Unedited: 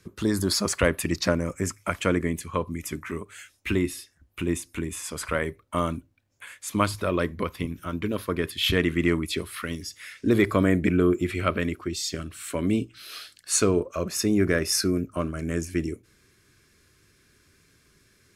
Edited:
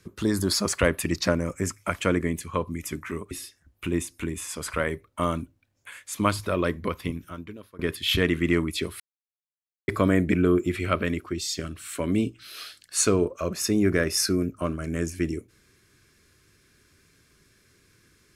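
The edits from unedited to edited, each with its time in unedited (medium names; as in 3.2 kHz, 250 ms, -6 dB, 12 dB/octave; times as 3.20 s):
3.31–3.86 s: delete
7.67–8.34 s: fade out quadratic, to -21 dB
9.55–10.43 s: mute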